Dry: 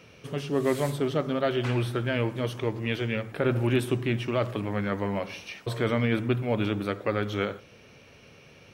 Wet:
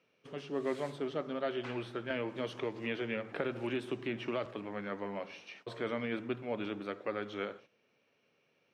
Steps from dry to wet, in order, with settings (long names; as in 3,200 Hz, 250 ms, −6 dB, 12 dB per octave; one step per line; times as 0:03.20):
high-pass filter 230 Hz 12 dB per octave
noise gate −46 dBFS, range −11 dB
Bessel low-pass filter 4,500 Hz, order 2
0:02.10–0:04.46: multiband upward and downward compressor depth 100%
level −8.5 dB